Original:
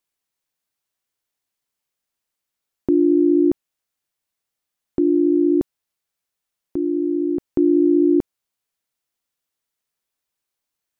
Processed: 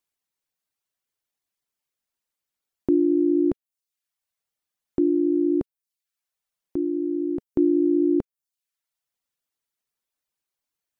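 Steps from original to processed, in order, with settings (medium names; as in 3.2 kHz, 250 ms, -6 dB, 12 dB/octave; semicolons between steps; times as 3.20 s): reverb removal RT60 0.63 s; trim -2.5 dB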